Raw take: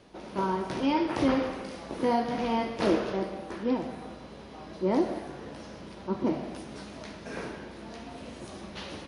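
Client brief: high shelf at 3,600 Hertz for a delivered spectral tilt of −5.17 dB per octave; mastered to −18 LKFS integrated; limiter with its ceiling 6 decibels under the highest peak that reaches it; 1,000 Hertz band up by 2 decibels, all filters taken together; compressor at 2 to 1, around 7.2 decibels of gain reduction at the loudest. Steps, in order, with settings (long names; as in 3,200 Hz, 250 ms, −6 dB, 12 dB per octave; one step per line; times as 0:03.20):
parametric band 1,000 Hz +3 dB
high-shelf EQ 3,600 Hz −8.5 dB
downward compressor 2 to 1, threshold −33 dBFS
level +20 dB
brickwall limiter −5.5 dBFS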